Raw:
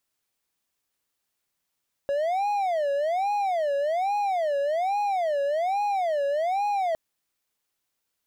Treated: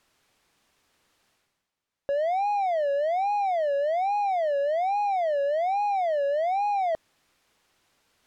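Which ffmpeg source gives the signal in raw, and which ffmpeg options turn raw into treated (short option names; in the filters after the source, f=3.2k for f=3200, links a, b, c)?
-f lavfi -i "aevalsrc='0.0944*(1-4*abs(mod((693*t-134/(2*PI*1.2)*sin(2*PI*1.2*t))+0.25,1)-0.5))':d=4.86:s=44100"
-af "areverse,acompressor=mode=upward:threshold=-47dB:ratio=2.5,areverse,aemphasis=mode=reproduction:type=50fm"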